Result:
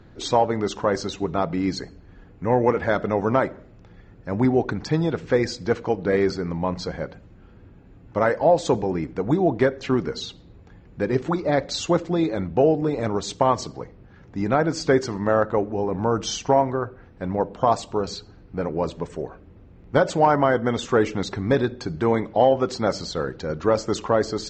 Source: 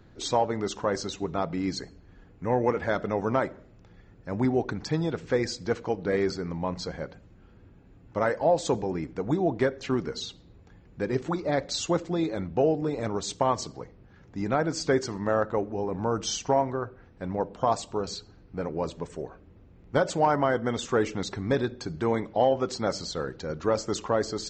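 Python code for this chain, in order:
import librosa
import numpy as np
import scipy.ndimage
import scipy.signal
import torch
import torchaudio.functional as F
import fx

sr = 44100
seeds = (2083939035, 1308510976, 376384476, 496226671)

y = fx.high_shelf(x, sr, hz=6900.0, db=-10.0)
y = y * librosa.db_to_amplitude(5.5)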